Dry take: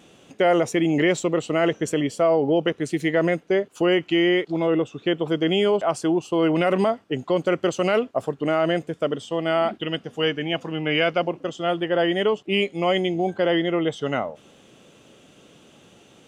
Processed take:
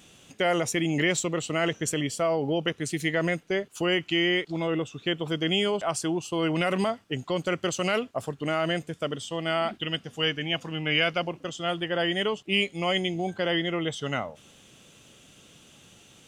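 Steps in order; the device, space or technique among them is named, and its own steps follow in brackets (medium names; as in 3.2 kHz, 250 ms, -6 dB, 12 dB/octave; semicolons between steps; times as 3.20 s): smiley-face EQ (bass shelf 200 Hz +4 dB; peaking EQ 410 Hz -8.5 dB 2.9 oct; treble shelf 5.1 kHz +6.5 dB)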